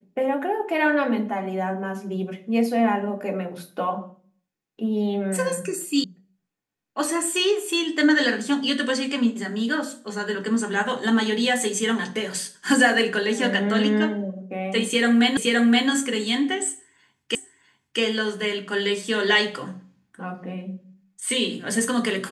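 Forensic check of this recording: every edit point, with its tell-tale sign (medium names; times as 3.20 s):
6.04 s: sound stops dead
15.37 s: repeat of the last 0.52 s
17.35 s: repeat of the last 0.65 s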